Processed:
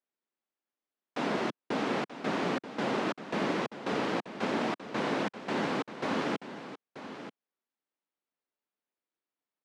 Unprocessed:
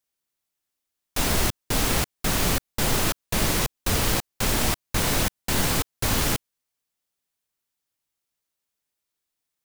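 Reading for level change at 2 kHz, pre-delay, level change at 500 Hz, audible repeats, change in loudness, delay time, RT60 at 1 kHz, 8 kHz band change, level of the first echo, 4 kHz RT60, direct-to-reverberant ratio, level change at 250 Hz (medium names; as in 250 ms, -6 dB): -6.5 dB, no reverb, -1.5 dB, 1, -8.5 dB, 933 ms, no reverb, -25.5 dB, -12.0 dB, no reverb, no reverb, -2.5 dB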